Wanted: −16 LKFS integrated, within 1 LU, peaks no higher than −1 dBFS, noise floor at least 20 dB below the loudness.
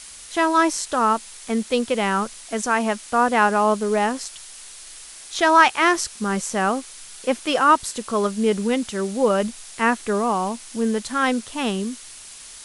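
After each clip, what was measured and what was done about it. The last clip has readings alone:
background noise floor −41 dBFS; target noise floor −42 dBFS; integrated loudness −21.5 LKFS; sample peak −2.5 dBFS; target loudness −16.0 LKFS
→ noise reduction from a noise print 6 dB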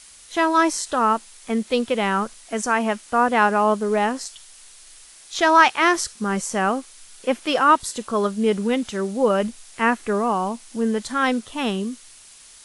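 background noise floor −47 dBFS; integrated loudness −21.5 LKFS; sample peak −2.5 dBFS; target loudness −16.0 LKFS
→ level +5.5 dB
brickwall limiter −1 dBFS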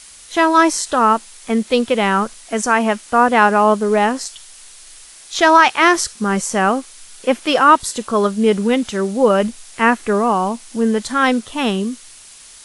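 integrated loudness −16.0 LKFS; sample peak −1.0 dBFS; background noise floor −41 dBFS

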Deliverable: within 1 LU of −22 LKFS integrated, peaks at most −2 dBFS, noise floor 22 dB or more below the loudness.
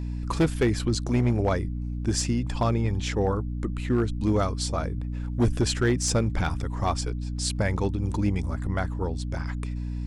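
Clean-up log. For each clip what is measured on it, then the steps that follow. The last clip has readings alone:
share of clipped samples 0.8%; peaks flattened at −16.0 dBFS; mains hum 60 Hz; hum harmonics up to 300 Hz; level of the hum −28 dBFS; integrated loudness −27.0 LKFS; sample peak −16.0 dBFS; target loudness −22.0 LKFS
→ clipped peaks rebuilt −16 dBFS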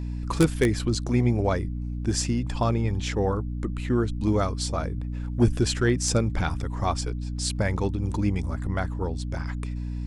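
share of clipped samples 0.0%; mains hum 60 Hz; hum harmonics up to 300 Hz; level of the hum −28 dBFS
→ mains-hum notches 60/120/180/240/300 Hz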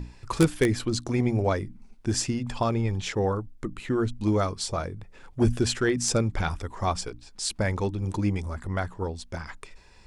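mains hum none found; integrated loudness −27.5 LKFS; sample peak −6.0 dBFS; target loudness −22.0 LKFS
→ level +5.5 dB
brickwall limiter −2 dBFS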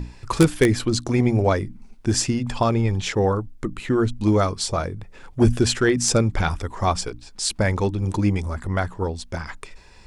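integrated loudness −22.0 LKFS; sample peak −2.0 dBFS; background noise floor −46 dBFS

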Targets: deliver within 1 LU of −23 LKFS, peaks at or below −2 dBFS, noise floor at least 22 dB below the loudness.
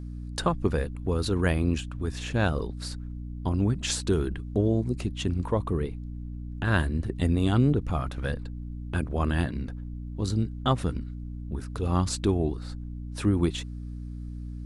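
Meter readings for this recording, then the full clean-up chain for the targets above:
mains hum 60 Hz; hum harmonics up to 300 Hz; level of the hum −34 dBFS; integrated loudness −28.5 LKFS; sample peak −9.0 dBFS; target loudness −23.0 LKFS
→ mains-hum notches 60/120/180/240/300 Hz
level +5.5 dB

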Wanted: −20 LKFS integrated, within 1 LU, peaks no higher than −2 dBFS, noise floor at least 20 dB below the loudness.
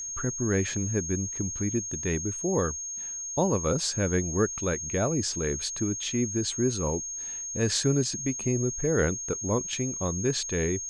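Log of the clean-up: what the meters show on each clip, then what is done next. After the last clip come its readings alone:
interfering tone 6,500 Hz; level of the tone −33 dBFS; integrated loudness −28.0 LKFS; sample peak −11.5 dBFS; target loudness −20.0 LKFS
→ notch filter 6,500 Hz, Q 30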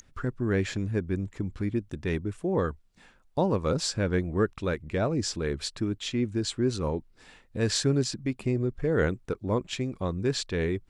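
interfering tone none found; integrated loudness −29.5 LKFS; sample peak −12.5 dBFS; target loudness −20.0 LKFS
→ level +9.5 dB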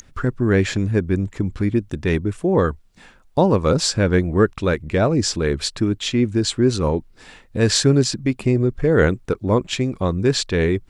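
integrated loudness −20.0 LKFS; sample peak −3.0 dBFS; background noise floor −51 dBFS

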